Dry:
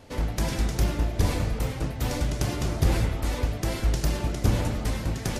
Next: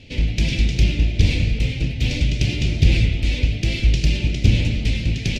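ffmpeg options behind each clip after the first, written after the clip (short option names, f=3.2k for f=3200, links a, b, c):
-af "firequalizer=gain_entry='entry(130,0);entry(1100,-27);entry(2400,7);entry(11000,-23)':delay=0.05:min_phase=1,volume=8dB"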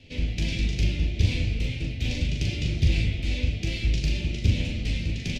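-filter_complex "[0:a]acrossover=split=170|3000[a][b][c];[b]acompressor=threshold=-23dB:ratio=6[d];[a][d][c]amix=inputs=3:normalize=0,asplit=2[e][f];[f]aecho=0:1:12|40:0.376|0.596[g];[e][g]amix=inputs=2:normalize=0,volume=-8dB"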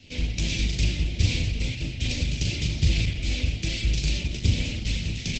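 -af "crystalizer=i=2.5:c=0" -ar 48000 -c:a libopus -b:a 12k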